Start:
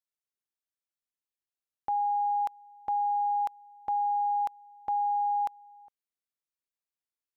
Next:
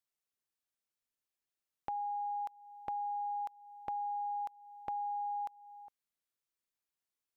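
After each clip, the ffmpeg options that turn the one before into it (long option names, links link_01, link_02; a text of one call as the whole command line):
ffmpeg -i in.wav -af "acompressor=threshold=-43dB:ratio=2.5,volume=1dB" out.wav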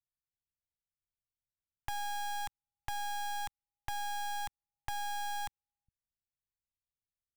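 ffmpeg -i in.wav -filter_complex "[0:a]equalizer=frequency=410:width=0.73:gain=-13.5,acrossover=split=180[link_01][link_02];[link_02]acrusher=bits=5:dc=4:mix=0:aa=0.000001[link_03];[link_01][link_03]amix=inputs=2:normalize=0,volume=10dB" out.wav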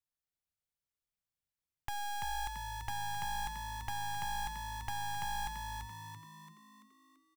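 ffmpeg -i in.wav -filter_complex "[0:a]asplit=7[link_01][link_02][link_03][link_04][link_05][link_06][link_07];[link_02]adelay=337,afreqshift=53,volume=-4.5dB[link_08];[link_03]adelay=674,afreqshift=106,volume=-10.7dB[link_09];[link_04]adelay=1011,afreqshift=159,volume=-16.9dB[link_10];[link_05]adelay=1348,afreqshift=212,volume=-23.1dB[link_11];[link_06]adelay=1685,afreqshift=265,volume=-29.3dB[link_12];[link_07]adelay=2022,afreqshift=318,volume=-35.5dB[link_13];[link_01][link_08][link_09][link_10][link_11][link_12][link_13]amix=inputs=7:normalize=0,volume=-1.5dB" out.wav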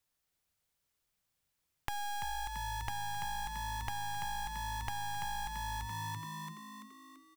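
ffmpeg -i in.wav -af "acompressor=threshold=-46dB:ratio=6,volume=10.5dB" out.wav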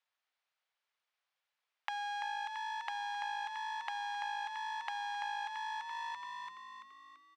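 ffmpeg -i in.wav -filter_complex "[0:a]highpass=380,lowpass=6100,aeval=exprs='0.119*(cos(1*acos(clip(val(0)/0.119,-1,1)))-cos(1*PI/2))+0.0106*(cos(6*acos(clip(val(0)/0.119,-1,1)))-cos(6*PI/2))':channel_layout=same,acrossover=split=560 4000:gain=0.0794 1 0.224[link_01][link_02][link_03];[link_01][link_02][link_03]amix=inputs=3:normalize=0,volume=2dB" out.wav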